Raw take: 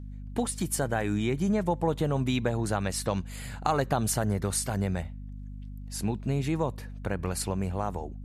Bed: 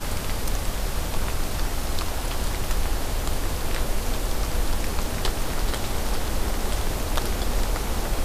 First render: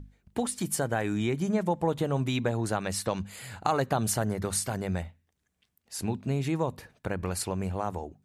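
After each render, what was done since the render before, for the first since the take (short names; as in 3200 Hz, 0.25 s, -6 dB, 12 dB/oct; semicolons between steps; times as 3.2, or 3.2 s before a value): notches 50/100/150/200/250 Hz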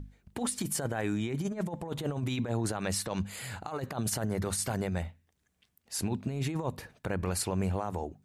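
negative-ratio compressor -30 dBFS, ratio -0.5; limiter -21 dBFS, peak gain reduction 7.5 dB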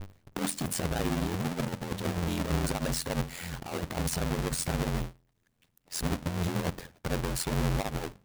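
half-waves squared off; ring modulator 43 Hz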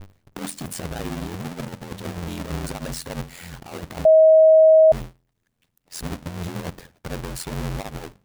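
4.05–4.92 bleep 635 Hz -8.5 dBFS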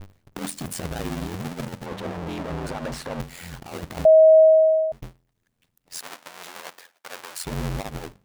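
1.86–3.2 overdrive pedal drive 20 dB, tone 1600 Hz, clips at -20.5 dBFS; 4.39–5.02 fade out; 5.98–7.44 HPF 820 Hz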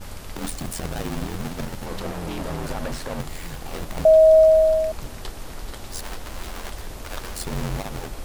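add bed -9.5 dB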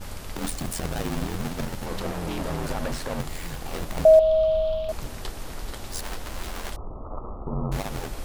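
4.19–4.89 EQ curve 190 Hz 0 dB, 300 Hz -11 dB, 500 Hz -10 dB, 1200 Hz -3 dB, 1900 Hz -16 dB, 3200 Hz +8 dB, 5900 Hz -16 dB, 8800 Hz -26 dB, 14000 Hz -15 dB; 6.76–7.72 Chebyshev low-pass 1300 Hz, order 8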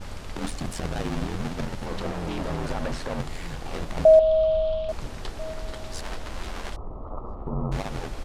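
air absorption 57 m; outdoor echo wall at 230 m, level -22 dB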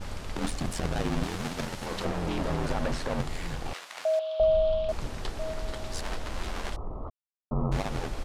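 1.23–2.05 tilt +1.5 dB/oct; 3.73–4.4 HPF 1300 Hz; 7.1–7.51 mute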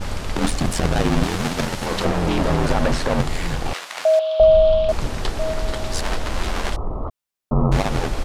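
gain +10.5 dB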